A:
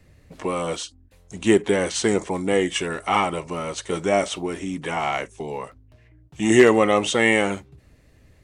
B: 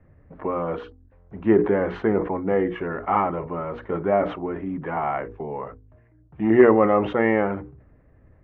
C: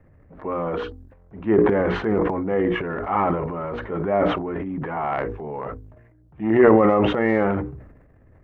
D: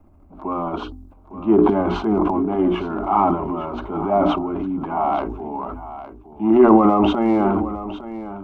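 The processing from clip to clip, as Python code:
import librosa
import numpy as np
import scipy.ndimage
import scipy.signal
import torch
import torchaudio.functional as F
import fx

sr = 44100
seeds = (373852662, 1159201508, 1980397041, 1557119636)

y1 = scipy.signal.sosfilt(scipy.signal.butter(4, 1600.0, 'lowpass', fs=sr, output='sos'), x)
y1 = fx.hum_notches(y1, sr, base_hz=60, count=8)
y1 = fx.sustainer(y1, sr, db_per_s=110.0)
y2 = fx.transient(y1, sr, attack_db=-4, sustain_db=10)
y3 = fx.fixed_phaser(y2, sr, hz=490.0, stages=6)
y3 = y3 + 10.0 ** (-13.5 / 20.0) * np.pad(y3, (int(858 * sr / 1000.0), 0))[:len(y3)]
y3 = F.gain(torch.from_numpy(y3), 6.0).numpy()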